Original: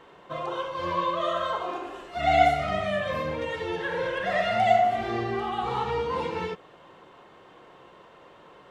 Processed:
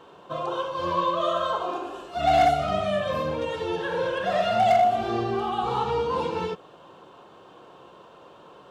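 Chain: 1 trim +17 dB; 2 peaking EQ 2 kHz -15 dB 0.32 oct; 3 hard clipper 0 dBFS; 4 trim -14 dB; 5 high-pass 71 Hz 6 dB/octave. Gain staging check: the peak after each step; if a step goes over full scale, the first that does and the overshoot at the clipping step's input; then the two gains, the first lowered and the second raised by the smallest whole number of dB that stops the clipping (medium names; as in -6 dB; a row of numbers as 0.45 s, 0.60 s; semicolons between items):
+9.5 dBFS, +9.0 dBFS, 0.0 dBFS, -14.0 dBFS, -12.5 dBFS; step 1, 9.0 dB; step 1 +8 dB, step 4 -5 dB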